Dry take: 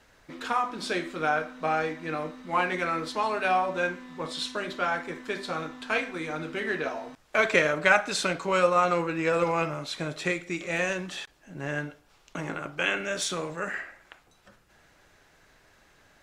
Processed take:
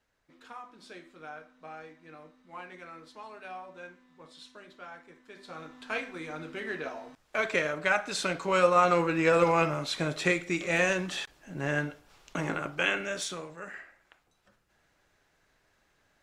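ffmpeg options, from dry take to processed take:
-af "volume=2dB,afade=t=in:st=5.31:d=0.62:silence=0.251189,afade=t=in:st=7.93:d=1.22:silence=0.398107,afade=t=out:st=12.51:d=0.99:silence=0.251189"

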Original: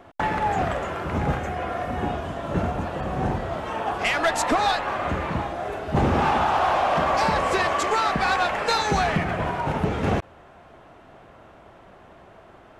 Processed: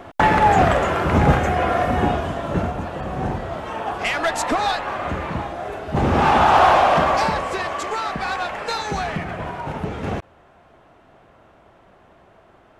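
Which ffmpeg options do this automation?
-af "volume=17dB,afade=t=out:st=1.8:d=0.94:silence=0.375837,afade=t=in:st=5.98:d=0.62:silence=0.398107,afade=t=out:st=6.6:d=0.87:silence=0.266073"

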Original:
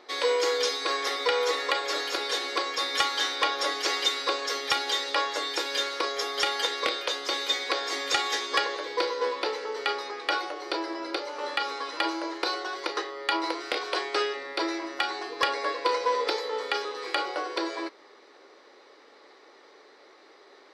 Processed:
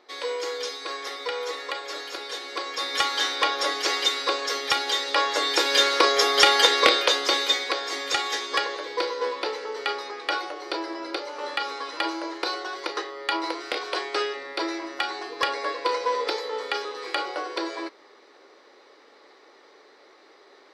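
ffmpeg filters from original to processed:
-af "volume=10dB,afade=t=in:st=2.45:d=0.71:silence=0.421697,afade=t=in:st=5.06:d=0.92:silence=0.421697,afade=t=out:st=6.92:d=0.84:silence=0.334965"

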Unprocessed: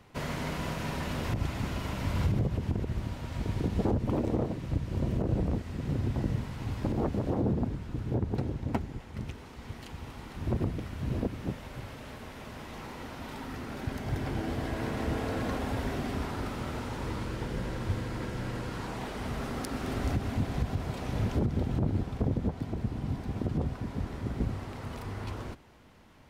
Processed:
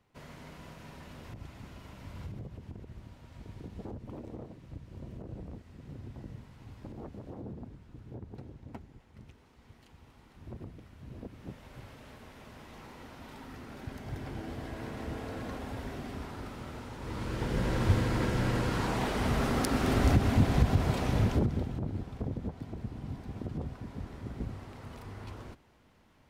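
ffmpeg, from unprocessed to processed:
-af "volume=6dB,afade=t=in:st=11.15:d=0.64:silence=0.421697,afade=t=in:st=17:d=0.83:silence=0.223872,afade=t=out:st=20.92:d=0.82:silence=0.237137"

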